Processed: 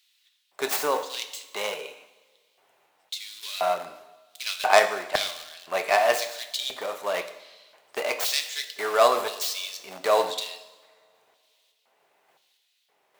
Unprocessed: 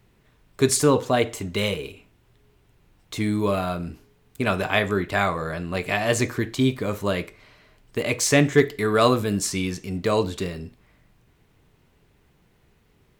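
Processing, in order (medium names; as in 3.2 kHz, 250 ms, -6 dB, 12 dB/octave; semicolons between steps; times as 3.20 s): tracing distortion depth 0.25 ms; in parallel at -10.5 dB: integer overflow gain 22.5 dB; on the sum: random-step tremolo; LFO high-pass square 0.97 Hz 690–3700 Hz; two-slope reverb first 0.9 s, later 2.5 s, from -18 dB, DRR 8 dB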